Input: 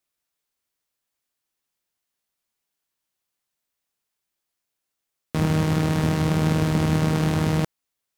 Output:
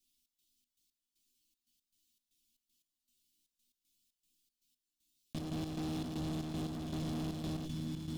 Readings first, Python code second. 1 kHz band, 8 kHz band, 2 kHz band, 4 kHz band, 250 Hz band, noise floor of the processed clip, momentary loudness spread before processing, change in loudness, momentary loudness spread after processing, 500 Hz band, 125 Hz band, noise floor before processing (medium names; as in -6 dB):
-19.0 dB, -15.5 dB, -22.5 dB, -13.0 dB, -15.0 dB, under -85 dBFS, 5 LU, -17.5 dB, 2 LU, -18.5 dB, -19.0 dB, -82 dBFS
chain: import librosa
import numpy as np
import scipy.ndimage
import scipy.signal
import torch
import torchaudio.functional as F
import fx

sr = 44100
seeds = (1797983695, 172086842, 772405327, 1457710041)

y = scipy.signal.sosfilt(scipy.signal.cheby1(2, 1.0, [230.0, 3400.0], 'bandstop', fs=sr, output='sos'), x)
y = fx.band_shelf(y, sr, hz=1000.0, db=-11.0, octaves=2.5)
y = fx.resonator_bank(y, sr, root=59, chord='major', decay_s=0.21)
y = fx.echo_feedback(y, sr, ms=714, feedback_pct=50, wet_db=-14.0)
y = fx.leveller(y, sr, passes=5)
y = fx.step_gate(y, sr, bpm=117, pattern='xx.xx.x..xxx.x.', floor_db=-12.0, edge_ms=4.5)
y = fx.high_shelf(y, sr, hz=3600.0, db=-6.0)
y = fx.env_flatten(y, sr, amount_pct=70)
y = y * 10.0 ** (-4.5 / 20.0)